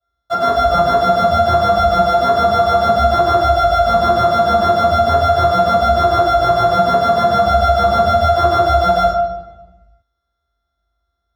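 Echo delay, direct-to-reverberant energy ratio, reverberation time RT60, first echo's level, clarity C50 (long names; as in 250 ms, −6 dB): no echo audible, −17.5 dB, 1.1 s, no echo audible, −0.5 dB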